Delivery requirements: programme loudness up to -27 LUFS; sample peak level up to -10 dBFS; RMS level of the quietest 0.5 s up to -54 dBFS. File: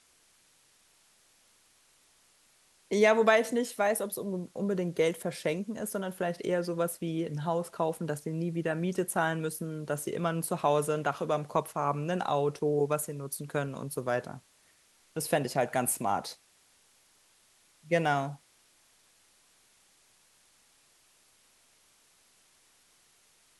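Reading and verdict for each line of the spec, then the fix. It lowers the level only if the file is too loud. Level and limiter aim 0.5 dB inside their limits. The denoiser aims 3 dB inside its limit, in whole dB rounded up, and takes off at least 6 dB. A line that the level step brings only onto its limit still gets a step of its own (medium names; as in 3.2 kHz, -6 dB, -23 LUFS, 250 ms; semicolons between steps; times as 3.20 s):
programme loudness -30.5 LUFS: pass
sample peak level -9.0 dBFS: fail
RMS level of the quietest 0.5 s -65 dBFS: pass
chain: peak limiter -10.5 dBFS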